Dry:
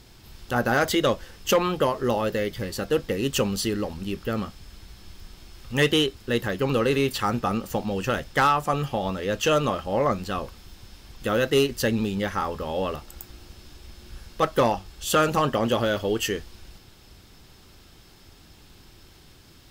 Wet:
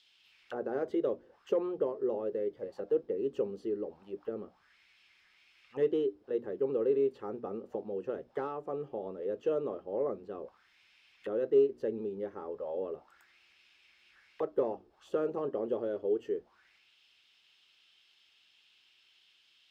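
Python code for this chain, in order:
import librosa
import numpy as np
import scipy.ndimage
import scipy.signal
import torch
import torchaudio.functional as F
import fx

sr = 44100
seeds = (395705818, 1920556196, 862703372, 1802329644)

y = fx.hum_notches(x, sr, base_hz=60, count=5)
y = fx.auto_wah(y, sr, base_hz=410.0, top_hz=3500.0, q=3.7, full_db=-25.5, direction='down')
y = y * librosa.db_to_amplitude(-2.5)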